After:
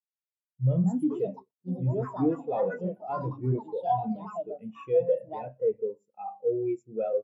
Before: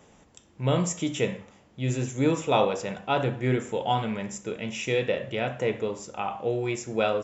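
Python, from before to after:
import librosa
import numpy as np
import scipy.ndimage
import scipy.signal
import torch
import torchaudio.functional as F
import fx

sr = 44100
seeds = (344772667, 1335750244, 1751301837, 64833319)

y = fx.echo_pitch(x, sr, ms=384, semitones=6, count=2, db_per_echo=-3.0)
y = fx.echo_feedback(y, sr, ms=121, feedback_pct=52, wet_db=-22.0)
y = fx.leveller(y, sr, passes=3)
y = fx.spectral_expand(y, sr, expansion=2.5)
y = y * 10.0 ** (-6.0 / 20.0)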